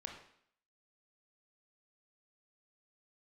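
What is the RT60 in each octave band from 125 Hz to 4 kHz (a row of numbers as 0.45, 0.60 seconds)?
0.55, 0.65, 0.60, 0.65, 0.65, 0.65 seconds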